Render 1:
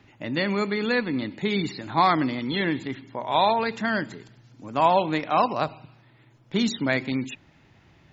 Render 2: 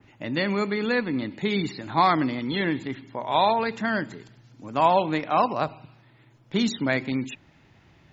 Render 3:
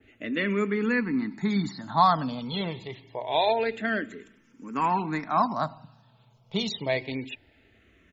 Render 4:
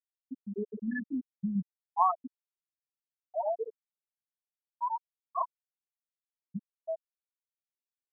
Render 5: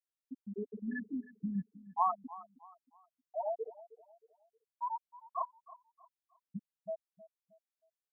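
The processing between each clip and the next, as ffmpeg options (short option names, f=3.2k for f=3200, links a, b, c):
-af "adynamicequalizer=threshold=0.00794:dfrequency=4500:dqfactor=0.73:tfrequency=4500:tqfactor=0.73:attack=5:release=100:ratio=0.375:range=2:mode=cutabove:tftype=bell"
-filter_complex "[0:a]aecho=1:1:4.5:0.31,asplit=2[a][b];[b]afreqshift=-0.26[c];[a][c]amix=inputs=2:normalize=1"
-af "aeval=exprs='val(0)*gte(abs(val(0)),0.0119)':c=same,afftfilt=real='re*gte(hypot(re,im),0.501)':imag='im*gte(hypot(re,im),0.501)':win_size=1024:overlap=0.75,volume=-4.5dB"
-af "aecho=1:1:314|628|942:0.126|0.0453|0.0163,volume=-4.5dB"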